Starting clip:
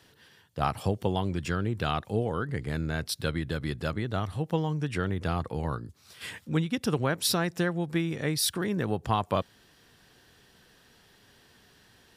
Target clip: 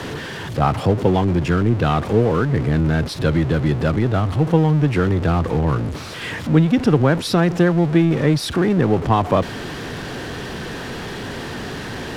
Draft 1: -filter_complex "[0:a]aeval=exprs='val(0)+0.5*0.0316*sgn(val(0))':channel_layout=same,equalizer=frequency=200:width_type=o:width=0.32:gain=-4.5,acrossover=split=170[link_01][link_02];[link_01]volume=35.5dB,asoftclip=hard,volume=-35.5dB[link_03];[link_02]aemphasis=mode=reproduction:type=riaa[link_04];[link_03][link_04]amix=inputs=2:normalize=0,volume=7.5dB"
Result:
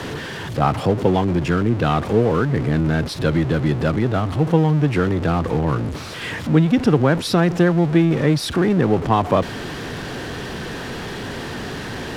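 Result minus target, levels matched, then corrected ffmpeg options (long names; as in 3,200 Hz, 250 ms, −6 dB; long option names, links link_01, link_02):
gain into a clipping stage and back: distortion +20 dB
-filter_complex "[0:a]aeval=exprs='val(0)+0.5*0.0316*sgn(val(0))':channel_layout=same,equalizer=frequency=200:width_type=o:width=0.32:gain=-4.5,acrossover=split=170[link_01][link_02];[link_01]volume=25.5dB,asoftclip=hard,volume=-25.5dB[link_03];[link_02]aemphasis=mode=reproduction:type=riaa[link_04];[link_03][link_04]amix=inputs=2:normalize=0,volume=7.5dB"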